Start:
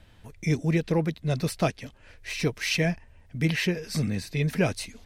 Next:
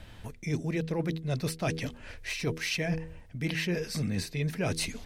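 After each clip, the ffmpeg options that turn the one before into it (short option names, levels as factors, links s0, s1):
-af "bandreject=f=80.52:t=h:w=4,bandreject=f=161.04:t=h:w=4,bandreject=f=241.56:t=h:w=4,bandreject=f=322.08:t=h:w=4,bandreject=f=402.6:t=h:w=4,bandreject=f=483.12:t=h:w=4,areverse,acompressor=threshold=0.0178:ratio=6,areverse,volume=2.11"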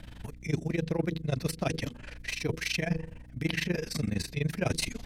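-af "tremolo=f=24:d=0.919,aeval=exprs='val(0)+0.00224*(sin(2*PI*60*n/s)+sin(2*PI*2*60*n/s)/2+sin(2*PI*3*60*n/s)/3+sin(2*PI*4*60*n/s)/4+sin(2*PI*5*60*n/s)/5)':c=same,volume=1.58"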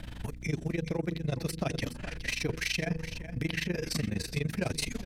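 -af "acompressor=threshold=0.0251:ratio=6,aecho=1:1:418:0.266,volume=1.58"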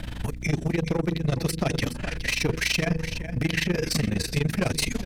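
-af "aeval=exprs='clip(val(0),-1,0.0376)':c=same,volume=2.51"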